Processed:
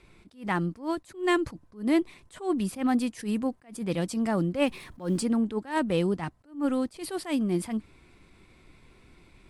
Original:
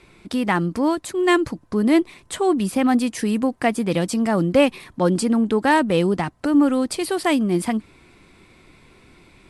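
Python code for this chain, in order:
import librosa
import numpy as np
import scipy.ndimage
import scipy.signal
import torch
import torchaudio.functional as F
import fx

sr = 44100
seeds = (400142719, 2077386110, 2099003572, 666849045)

y = fx.law_mismatch(x, sr, coded='mu', at=(4.66, 5.21), fade=0.02)
y = fx.low_shelf(y, sr, hz=84.0, db=8.5)
y = fx.attack_slew(y, sr, db_per_s=190.0)
y = y * 10.0 ** (-7.5 / 20.0)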